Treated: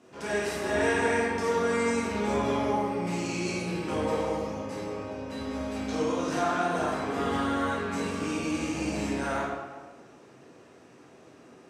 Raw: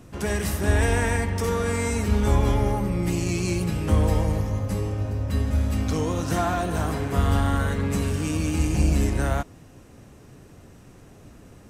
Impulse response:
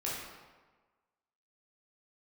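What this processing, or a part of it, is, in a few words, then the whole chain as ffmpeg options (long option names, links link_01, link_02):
supermarket ceiling speaker: -filter_complex "[0:a]highpass=280,lowpass=6900[link_01];[1:a]atrim=start_sample=2205[link_02];[link_01][link_02]afir=irnorm=-1:irlink=0,volume=-4dB"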